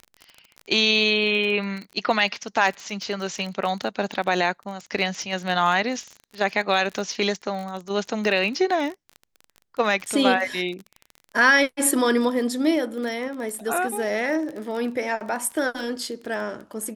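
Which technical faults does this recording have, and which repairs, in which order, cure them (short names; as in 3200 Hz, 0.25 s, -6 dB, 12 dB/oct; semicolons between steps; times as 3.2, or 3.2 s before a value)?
crackle 27/s -30 dBFS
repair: de-click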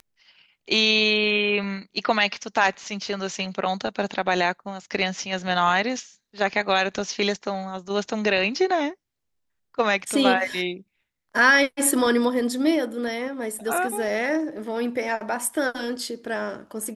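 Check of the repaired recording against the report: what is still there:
none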